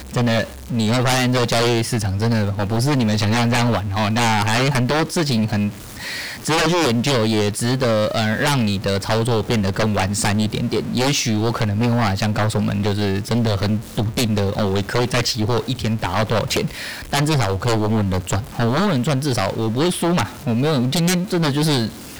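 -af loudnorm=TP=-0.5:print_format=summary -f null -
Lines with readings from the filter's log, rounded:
Input Integrated:    -19.4 LUFS
Input True Peak:     -12.5 dBTP
Input LRA:             1.8 LU
Input Threshold:     -29.4 LUFS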